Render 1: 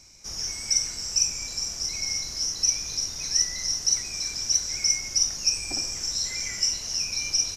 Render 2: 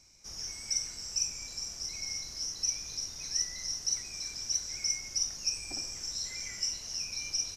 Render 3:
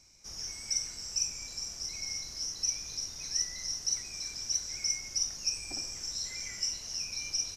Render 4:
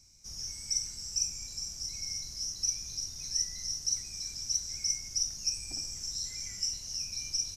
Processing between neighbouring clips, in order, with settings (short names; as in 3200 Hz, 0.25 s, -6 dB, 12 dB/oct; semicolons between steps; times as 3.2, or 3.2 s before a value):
notch 7000 Hz, Q 28; gain -8.5 dB
nothing audible
tone controls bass +12 dB, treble +11 dB; gain -8.5 dB